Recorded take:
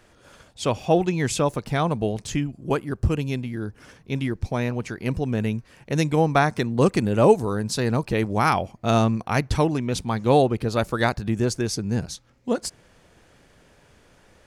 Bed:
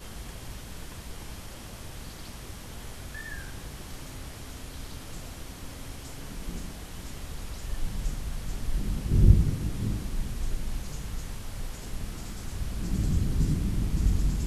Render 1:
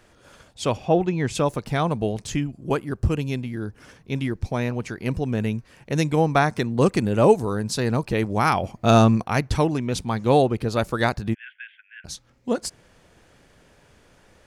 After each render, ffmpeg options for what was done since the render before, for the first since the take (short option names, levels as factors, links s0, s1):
-filter_complex "[0:a]asplit=3[s0][s1][s2];[s0]afade=t=out:st=0.76:d=0.02[s3];[s1]lowpass=f=2300:p=1,afade=t=in:st=0.76:d=0.02,afade=t=out:st=1.34:d=0.02[s4];[s2]afade=t=in:st=1.34:d=0.02[s5];[s3][s4][s5]amix=inputs=3:normalize=0,asettb=1/sr,asplit=3[s6][s7][s8];[s6]atrim=end=8.634[s9];[s7]atrim=start=8.63:end=9.24,asetpts=PTS-STARTPTS,afade=t=in:d=0.004:c=qsin,afade=t=out:st=0.606:d=0.004:c=qsin,acontrast=30[s10];[s8]atrim=start=9.236[s11];[s9][s10]acrossfade=d=0.004:c1=hsin:c2=qsin[s12];[s12][s11]acrossfade=d=0.004:c1=qsin:c2=hsin,asplit=3[s13][s14][s15];[s13]afade=t=out:st=11.33:d=0.02[s16];[s14]asuperpass=centerf=2200:order=20:qfactor=1.2,afade=t=in:st=11.33:d=0.02,afade=t=out:st=12.04:d=0.02[s17];[s15]afade=t=in:st=12.04:d=0.02[s18];[s16][s17][s18]amix=inputs=3:normalize=0"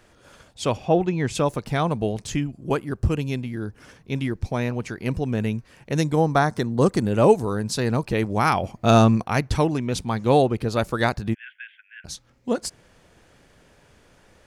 -filter_complex "[0:a]asettb=1/sr,asplit=3[s0][s1][s2];[s0]atrim=end=6.014[s3];[s1]atrim=start=6.01:end=7.05,asetpts=PTS-STARTPTS,afade=t=in:d=0.004:c=qsin,afade=t=out:st=1.036:d=0.004:c=qsin,equalizer=f=2500:w=3:g=-10[s4];[s2]atrim=start=7.046[s5];[s3][s4]acrossfade=d=0.004:c1=hsin:c2=qsin[s6];[s6][s5]acrossfade=d=0.004:c1=qsin:c2=hsin"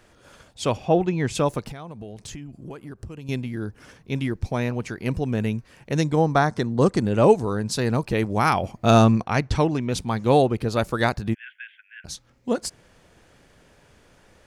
-filter_complex "[0:a]asettb=1/sr,asplit=3[s0][s1][s2];[s0]atrim=end=1.714[s3];[s1]atrim=start=1.71:end=3.29,asetpts=PTS-STARTPTS,afade=t=in:d=0.004:c=qsin,afade=t=out:st=1.576:d=0.004:c=qsin,acompressor=threshold=0.02:ratio=6:attack=3.2:release=140:knee=1:detection=peak[s4];[s2]atrim=start=3.286[s5];[s3][s4]acrossfade=d=0.004:c1=hsin:c2=qsin[s6];[s6][s5]acrossfade=d=0.004:c1=qsin:c2=hsin,asettb=1/sr,asplit=3[s7][s8][s9];[s7]atrim=end=5.954[s10];[s8]atrim=start=5.95:end=7.71,asetpts=PTS-STARTPTS,afade=t=in:d=0.004:c=qsin,afade=t=out:st=1.756:d=0.004:c=qsin,lowpass=8300[s11];[s9]atrim=start=7.706[s12];[s10][s11]acrossfade=d=0.004:c1=hsin:c2=qsin[s13];[s13][s12]acrossfade=d=0.004:c1=qsin:c2=hsin,asettb=1/sr,asplit=3[s14][s15][s16];[s14]atrim=end=9.124[s17];[s15]atrim=start=9.12:end=9.89,asetpts=PTS-STARTPTS,afade=t=in:d=0.004:c=qsin,afade=t=out:st=0.766:d=0.004:c=qsin,lowpass=7200[s18];[s16]atrim=start=9.886[s19];[s17][s18]acrossfade=d=0.004:c1=hsin:c2=qsin[s20];[s20][s19]acrossfade=d=0.004:c1=qsin:c2=hsin"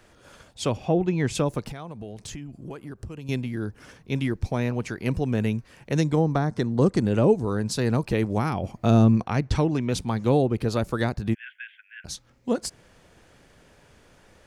-filter_complex "[0:a]acrossover=split=450[s0][s1];[s1]acompressor=threshold=0.0447:ratio=10[s2];[s0][s2]amix=inputs=2:normalize=0"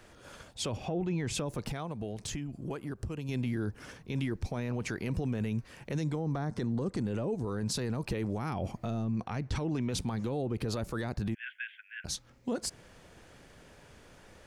-af "acompressor=threshold=0.0708:ratio=3,alimiter=level_in=1.06:limit=0.0631:level=0:latency=1:release=14,volume=0.944"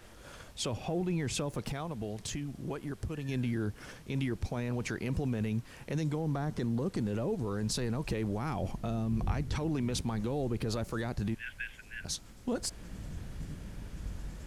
-filter_complex "[1:a]volume=0.158[s0];[0:a][s0]amix=inputs=2:normalize=0"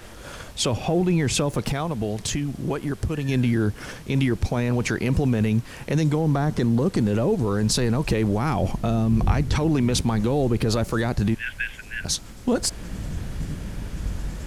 -af "volume=3.76"